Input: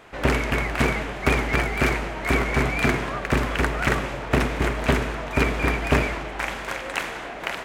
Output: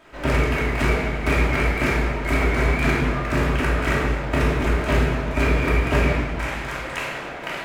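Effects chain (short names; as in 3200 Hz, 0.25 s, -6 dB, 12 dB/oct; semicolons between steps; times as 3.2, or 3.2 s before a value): companded quantiser 8-bit; reverb RT60 1.2 s, pre-delay 3 ms, DRR -5.5 dB; gain -6 dB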